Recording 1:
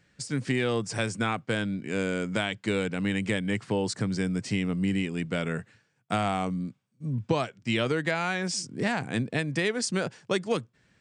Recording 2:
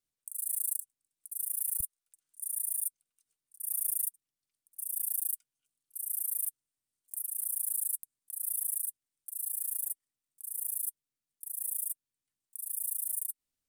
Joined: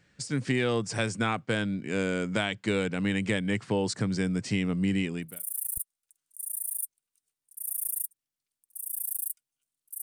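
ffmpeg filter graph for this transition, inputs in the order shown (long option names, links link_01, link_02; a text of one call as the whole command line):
ffmpeg -i cue0.wav -i cue1.wav -filter_complex "[0:a]apad=whole_dur=10.02,atrim=end=10.02,atrim=end=5.46,asetpts=PTS-STARTPTS[link_01];[1:a]atrim=start=1.15:end=6.05,asetpts=PTS-STARTPTS[link_02];[link_01][link_02]acrossfade=duration=0.34:curve1=qua:curve2=qua" out.wav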